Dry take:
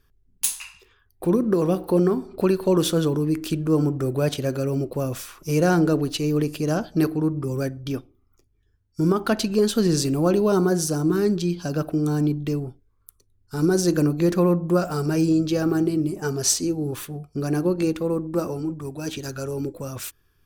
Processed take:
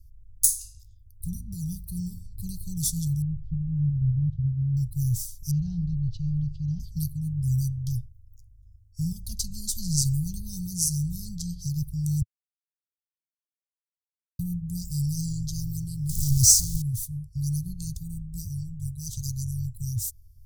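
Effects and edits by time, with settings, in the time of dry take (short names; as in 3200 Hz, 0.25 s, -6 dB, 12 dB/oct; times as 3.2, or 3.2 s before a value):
3.22–4.77 LPF 1500 Hz 24 dB/oct
5.51–6.8 LPF 3100 Hz 24 dB/oct
12.22–14.39 mute
16.09–16.82 zero-crossing step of -20.5 dBFS
whole clip: inverse Chebyshev band-stop 260–2400 Hz, stop band 50 dB; tone controls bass +12 dB, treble +1 dB; gain +2.5 dB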